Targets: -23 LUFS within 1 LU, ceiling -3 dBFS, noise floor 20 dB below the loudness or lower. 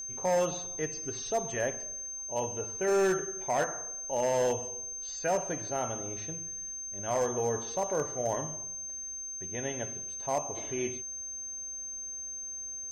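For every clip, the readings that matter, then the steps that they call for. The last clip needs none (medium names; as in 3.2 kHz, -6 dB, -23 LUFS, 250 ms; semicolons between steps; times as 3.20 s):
clipped samples 0.9%; clipping level -22.5 dBFS; steady tone 6.3 kHz; tone level -37 dBFS; loudness -32.5 LUFS; peak level -22.5 dBFS; loudness target -23.0 LUFS
-> clip repair -22.5 dBFS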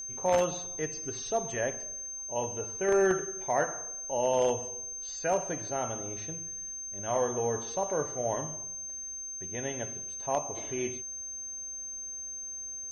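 clipped samples 0.0%; steady tone 6.3 kHz; tone level -37 dBFS
-> band-stop 6.3 kHz, Q 30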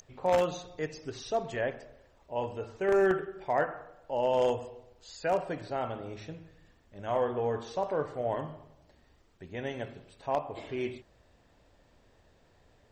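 steady tone not found; loudness -32.5 LUFS; peak level -13.0 dBFS; loudness target -23.0 LUFS
-> trim +9.5 dB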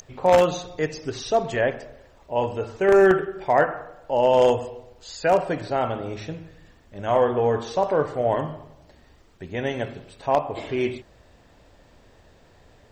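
loudness -23.0 LUFS; peak level -3.5 dBFS; noise floor -55 dBFS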